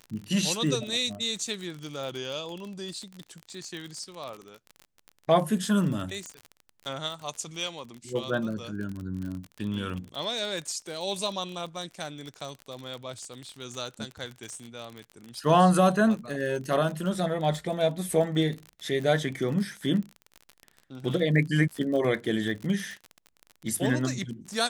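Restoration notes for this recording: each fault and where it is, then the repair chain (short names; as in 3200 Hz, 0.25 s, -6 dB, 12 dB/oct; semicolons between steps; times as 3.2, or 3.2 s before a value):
crackle 40/s -33 dBFS
6.26 pop -24 dBFS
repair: de-click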